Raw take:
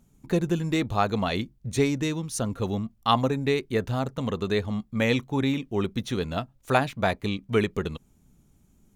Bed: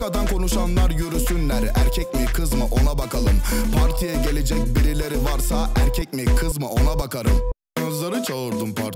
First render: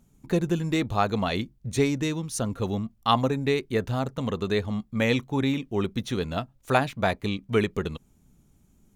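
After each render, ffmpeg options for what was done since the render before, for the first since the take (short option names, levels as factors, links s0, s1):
-af anull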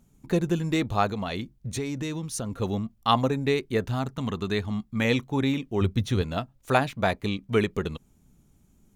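-filter_complex "[0:a]asettb=1/sr,asplit=3[s0][s1][s2];[s0]atrim=end=1.094[s3];[s1]atrim=start=1.09:end=2.59,asetpts=PTS-STARTPTS,afade=t=in:d=0.004:c=qsin,afade=t=out:st=1.496:d=0.004:c=qsin,acompressor=threshold=0.0447:ratio=4:attack=3.2:release=140:knee=1:detection=peak[s4];[s2]atrim=start=2.586[s5];[s3][s4]acrossfade=d=0.004:c1=hsin:c2=qsin[s6];[s6][s5]acrossfade=d=0.004:c1=qsin:c2=hsin,asettb=1/sr,asplit=3[s7][s8][s9];[s7]atrim=end=3.884[s10];[s8]atrim=start=3.88:end=5.05,asetpts=PTS-STARTPTS,afade=t=in:d=0.004:c=qsin,afade=t=out:st=1.166:d=0.004:c=qsin,equalizer=f=520:w=3.1:g=-9.5[s11];[s9]atrim=start=5.046[s12];[s10][s11]acrossfade=d=0.004:c1=hsin:c2=qsin[s13];[s13][s12]acrossfade=d=0.004:c1=qsin:c2=hsin,asettb=1/sr,asplit=3[s14][s15][s16];[s14]atrim=end=5.814[s17];[s15]atrim=start=5.81:end=6.22,asetpts=PTS-STARTPTS,afade=t=in:d=0.004:c=qsin,afade=t=out:st=0.406:d=0.004:c=qsin,equalizer=f=94:t=o:w=0.84:g=12.5[s18];[s16]atrim=start=6.216[s19];[s17][s18]acrossfade=d=0.004:c1=hsin:c2=qsin[s20];[s20][s19]acrossfade=d=0.004:c1=qsin:c2=hsin"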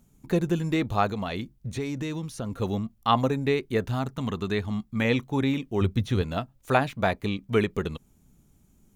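-filter_complex "[0:a]acrossover=split=3700[s0][s1];[s1]acompressor=threshold=0.00562:ratio=4:attack=1:release=60[s2];[s0][s2]amix=inputs=2:normalize=0,highshelf=f=11000:g=5"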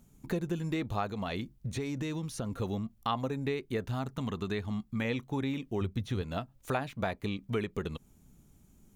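-af "acompressor=threshold=0.0224:ratio=2.5"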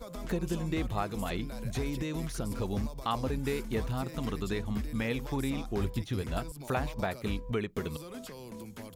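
-filter_complex "[1:a]volume=0.106[s0];[0:a][s0]amix=inputs=2:normalize=0"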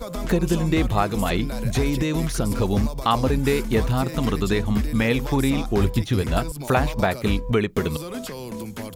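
-af "volume=3.76"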